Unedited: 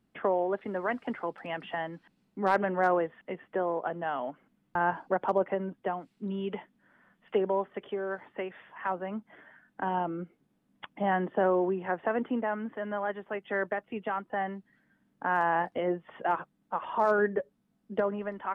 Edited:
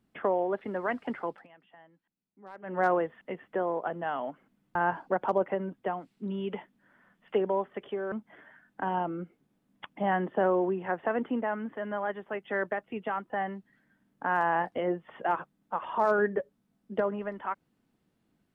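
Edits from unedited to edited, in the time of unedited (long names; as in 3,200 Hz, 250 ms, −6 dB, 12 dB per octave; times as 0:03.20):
0:01.30–0:02.80: duck −21.5 dB, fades 0.18 s
0:08.12–0:09.12: remove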